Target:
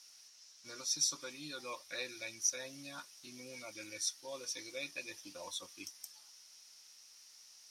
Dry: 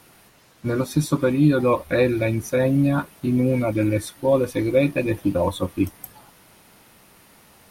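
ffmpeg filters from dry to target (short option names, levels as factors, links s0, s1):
-af "bandpass=f=5600:t=q:w=6.4:csg=0,volume=2.82"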